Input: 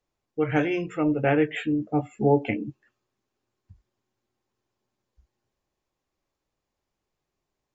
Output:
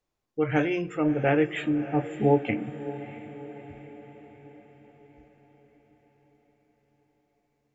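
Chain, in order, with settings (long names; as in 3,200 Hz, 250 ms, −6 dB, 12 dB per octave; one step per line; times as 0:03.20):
on a send: feedback delay with all-pass diffusion 635 ms, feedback 54%, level −14 dB
on the sum: comb and all-pass reverb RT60 0.88 s, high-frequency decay 0.8×, DRR 20 dB
level −1 dB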